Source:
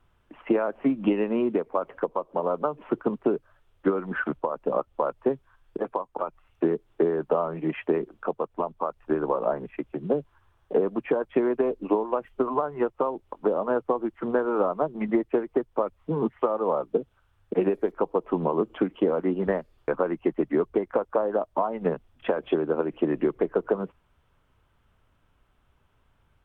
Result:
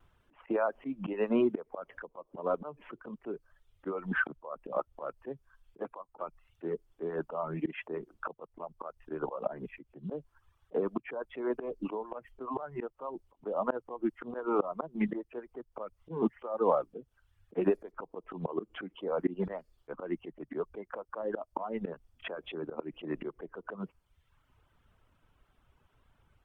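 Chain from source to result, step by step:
reverb reduction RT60 0.78 s
volume swells 195 ms
pitch vibrato 1.7 Hz 34 cents

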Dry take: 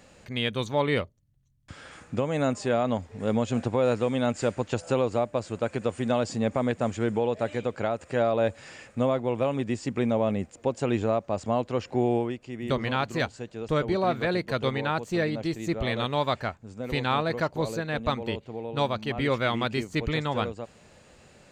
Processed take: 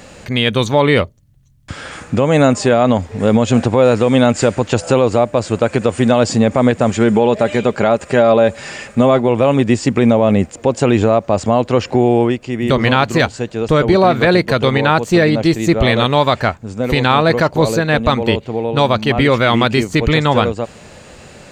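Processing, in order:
0:06.90–0:09.28: comb filter 5 ms, depth 35%
boost into a limiter +17 dB
level −1 dB

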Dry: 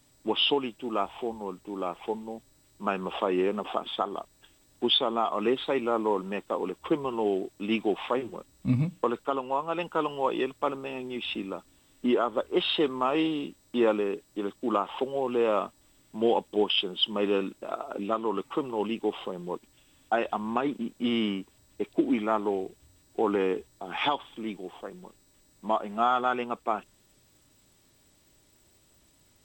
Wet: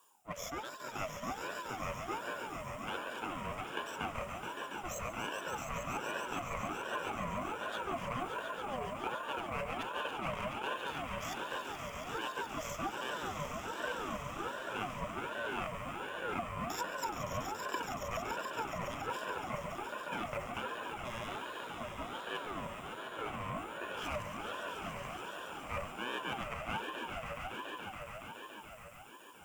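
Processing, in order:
lower of the sound and its delayed copy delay 0.47 ms
parametric band 210 Hz −6.5 dB 1.3 octaves
reversed playback
downward compressor, threshold −37 dBFS, peak gain reduction 14.5 dB
reversed playback
phaser with its sweep stopped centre 1,000 Hz, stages 6
on a send: echo that builds up and dies away 141 ms, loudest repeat 5, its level −8.5 dB
on the sum: ring modulator whose carrier an LFO sweeps 810 Hz, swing 30%, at 1.3 Hz
level +4 dB

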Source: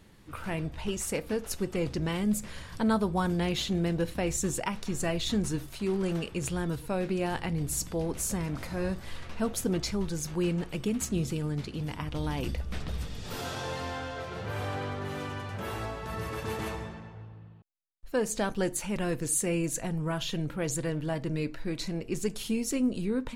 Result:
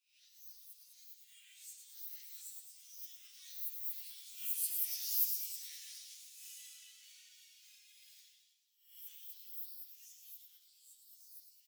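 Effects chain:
peak hold with a rise ahead of every peak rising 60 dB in 1.07 s
source passing by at 0:10.17, 20 m/s, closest 15 metres
high-pass filter 1,200 Hz 24 dB per octave
first difference
echo with shifted repeats 212 ms, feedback 59%, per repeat +110 Hz, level −7.5 dB
spring reverb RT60 1.8 s, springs 36/47 ms, chirp 40 ms, DRR 1.5 dB
wrong playback speed 7.5 ips tape played at 15 ips
string-ensemble chorus
level +6.5 dB

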